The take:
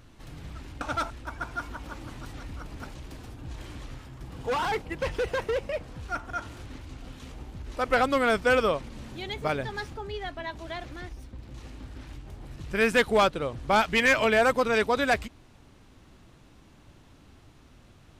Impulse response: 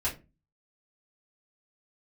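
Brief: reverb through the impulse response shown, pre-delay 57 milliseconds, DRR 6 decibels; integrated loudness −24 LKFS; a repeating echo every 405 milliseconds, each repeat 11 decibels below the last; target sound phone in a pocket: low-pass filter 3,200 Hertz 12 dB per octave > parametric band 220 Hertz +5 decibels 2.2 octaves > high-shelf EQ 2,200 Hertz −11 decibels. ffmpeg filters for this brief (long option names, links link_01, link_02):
-filter_complex "[0:a]aecho=1:1:405|810|1215:0.282|0.0789|0.0221,asplit=2[link_01][link_02];[1:a]atrim=start_sample=2205,adelay=57[link_03];[link_02][link_03]afir=irnorm=-1:irlink=0,volume=-12.5dB[link_04];[link_01][link_04]amix=inputs=2:normalize=0,lowpass=3200,equalizer=frequency=220:width_type=o:width=2.2:gain=5,highshelf=frequency=2200:gain=-11,volume=2.5dB"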